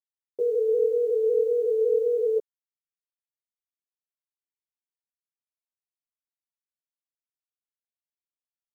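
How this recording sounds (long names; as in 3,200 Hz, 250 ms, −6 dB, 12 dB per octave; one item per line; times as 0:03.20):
a quantiser's noise floor 10 bits, dither none
a shimmering, thickened sound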